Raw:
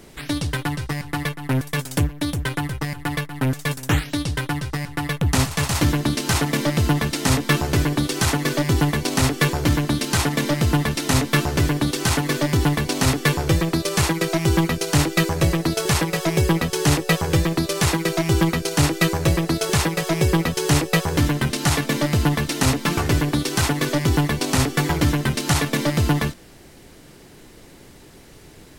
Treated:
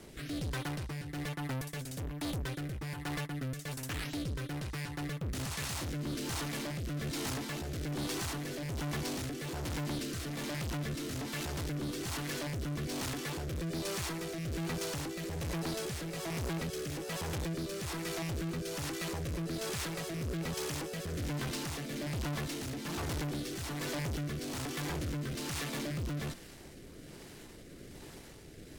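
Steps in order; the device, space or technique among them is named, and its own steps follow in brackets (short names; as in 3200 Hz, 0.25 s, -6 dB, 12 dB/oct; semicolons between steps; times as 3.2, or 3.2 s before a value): overdriven rotary cabinet (tube stage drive 34 dB, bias 0.55; rotary speaker horn 1.2 Hz)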